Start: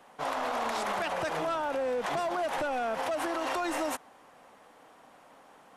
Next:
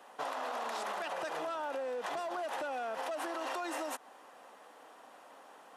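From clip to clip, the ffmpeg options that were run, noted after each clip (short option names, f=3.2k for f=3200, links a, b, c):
-af "highpass=310,bandreject=f=2.2k:w=14,acompressor=threshold=-36dB:ratio=6,volume=1dB"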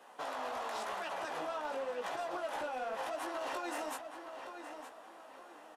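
-filter_complex "[0:a]flanger=delay=15.5:depth=4.6:speed=0.93,asoftclip=type=hard:threshold=-34.5dB,asplit=2[a][b];[b]adelay=918,lowpass=f=4.4k:p=1,volume=-8dB,asplit=2[c][d];[d]adelay=918,lowpass=f=4.4k:p=1,volume=0.33,asplit=2[e][f];[f]adelay=918,lowpass=f=4.4k:p=1,volume=0.33,asplit=2[g][h];[h]adelay=918,lowpass=f=4.4k:p=1,volume=0.33[i];[a][c][e][g][i]amix=inputs=5:normalize=0,volume=1.5dB"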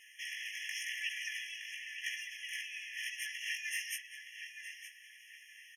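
-af "afftfilt=real='re*eq(mod(floor(b*sr/1024/1700),2),1)':imag='im*eq(mod(floor(b*sr/1024/1700),2),1)':win_size=1024:overlap=0.75,volume=10dB"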